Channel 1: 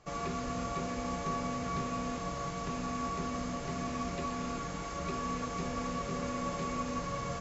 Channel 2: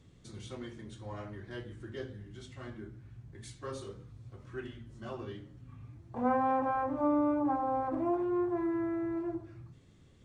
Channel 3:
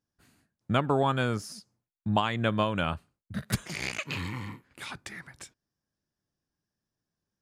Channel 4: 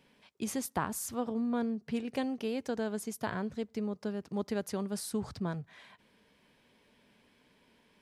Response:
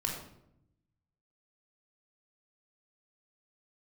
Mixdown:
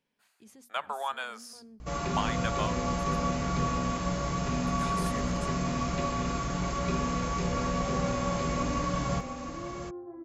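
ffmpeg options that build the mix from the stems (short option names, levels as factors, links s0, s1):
-filter_complex "[0:a]bandreject=f=66.59:t=h:w=4,bandreject=f=133.18:t=h:w=4,bandreject=f=199.77:t=h:w=4,bandreject=f=266.36:t=h:w=4,bandreject=f=332.95:t=h:w=4,bandreject=f=399.54:t=h:w=4,bandreject=f=466.13:t=h:w=4,bandreject=f=532.72:t=h:w=4,bandreject=f=599.31:t=h:w=4,bandreject=f=665.9:t=h:w=4,bandreject=f=732.49:t=h:w=4,bandreject=f=799.08:t=h:w=4,bandreject=f=865.67:t=h:w=4,bandreject=f=932.26:t=h:w=4,bandreject=f=998.85:t=h:w=4,bandreject=f=1065.44:t=h:w=4,bandreject=f=1132.03:t=h:w=4,bandreject=f=1198.62:t=h:w=4,bandreject=f=1265.21:t=h:w=4,bandreject=f=1331.8:t=h:w=4,bandreject=f=1398.39:t=h:w=4,bandreject=f=1464.98:t=h:w=4,bandreject=f=1531.57:t=h:w=4,bandreject=f=1598.16:t=h:w=4,bandreject=f=1664.75:t=h:w=4,bandreject=f=1731.34:t=h:w=4,bandreject=f=1797.93:t=h:w=4,bandreject=f=1864.52:t=h:w=4,bandreject=f=1931.11:t=h:w=4,bandreject=f=1997.7:t=h:w=4,bandreject=f=2064.29:t=h:w=4,bandreject=f=2130.88:t=h:w=4,bandreject=f=2197.47:t=h:w=4,bandreject=f=2264.06:t=h:w=4,bandreject=f=2330.65:t=h:w=4,bandreject=f=2397.24:t=h:w=4,bandreject=f=2463.83:t=h:w=4,bandreject=f=2530.42:t=h:w=4,aeval=exprs='val(0)+0.00398*(sin(2*PI*60*n/s)+sin(2*PI*2*60*n/s)/2+sin(2*PI*3*60*n/s)/3+sin(2*PI*4*60*n/s)/4+sin(2*PI*5*60*n/s)/5)':c=same,adelay=1800,volume=1.06,asplit=3[s0][s1][s2];[s1]volume=0.631[s3];[s2]volume=0.668[s4];[1:a]lowpass=1400,equalizer=f=380:t=o:w=1.1:g=5.5,adelay=1550,volume=0.158,asplit=2[s5][s6];[s6]volume=0.266[s7];[2:a]highpass=f=680:w=0.5412,highpass=f=680:w=1.3066,volume=0.596,asplit=3[s8][s9][s10];[s8]atrim=end=2.78,asetpts=PTS-STARTPTS,afade=t=out:st=2.776:d=0.004:c=hsin[s11];[s9]atrim=start=2.78:end=4.78,asetpts=PTS-STARTPTS,volume=0[s12];[s10]atrim=start=4.78,asetpts=PTS-STARTPTS,afade=t=in:d=0.004:c=hsin[s13];[s11][s12][s13]concat=n=3:v=0:a=1,asplit=2[s14][s15];[s15]volume=0.0668[s16];[3:a]alimiter=level_in=2:limit=0.0631:level=0:latency=1:release=17,volume=0.501,bandreject=f=60:t=h:w=6,bandreject=f=120:t=h:w=6,bandreject=f=180:t=h:w=6,bandreject=f=240:t=h:w=6,volume=0.596,afade=t=in:st=4.69:d=0.33:silence=0.251189[s17];[4:a]atrim=start_sample=2205[s18];[s3][s16]amix=inputs=2:normalize=0[s19];[s19][s18]afir=irnorm=-1:irlink=0[s20];[s4][s7]amix=inputs=2:normalize=0,aecho=0:1:704:1[s21];[s0][s5][s14][s17][s20][s21]amix=inputs=6:normalize=0"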